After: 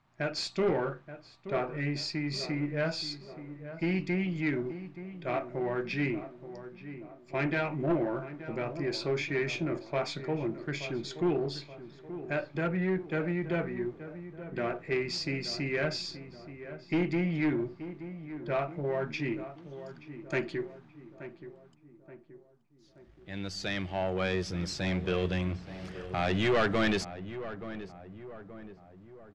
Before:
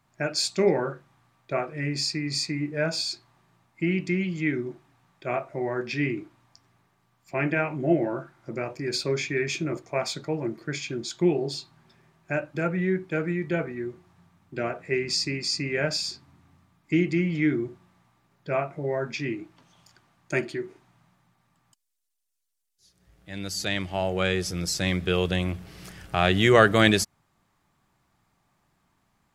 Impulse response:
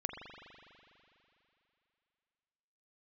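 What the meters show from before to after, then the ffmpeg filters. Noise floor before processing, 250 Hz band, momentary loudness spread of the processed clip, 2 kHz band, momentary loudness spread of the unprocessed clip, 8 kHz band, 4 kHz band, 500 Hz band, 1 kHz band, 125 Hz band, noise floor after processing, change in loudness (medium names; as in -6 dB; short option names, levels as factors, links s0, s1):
-71 dBFS, -4.5 dB, 16 LU, -6.0 dB, 12 LU, -13.0 dB, -8.0 dB, -5.0 dB, -5.5 dB, -4.5 dB, -58 dBFS, -6.0 dB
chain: -filter_complex "[0:a]aeval=exprs='if(lt(val(0),0),0.708*val(0),val(0))':c=same,aeval=exprs='(tanh(12.6*val(0)+0.25)-tanh(0.25))/12.6':c=same,lowpass=4100,asplit=2[s0][s1];[s1]adelay=877,lowpass=f=1400:p=1,volume=0.251,asplit=2[s2][s3];[s3]adelay=877,lowpass=f=1400:p=1,volume=0.51,asplit=2[s4][s5];[s5]adelay=877,lowpass=f=1400:p=1,volume=0.51,asplit=2[s6][s7];[s7]adelay=877,lowpass=f=1400:p=1,volume=0.51,asplit=2[s8][s9];[s9]adelay=877,lowpass=f=1400:p=1,volume=0.51[s10];[s2][s4][s6][s8][s10]amix=inputs=5:normalize=0[s11];[s0][s11]amix=inputs=2:normalize=0"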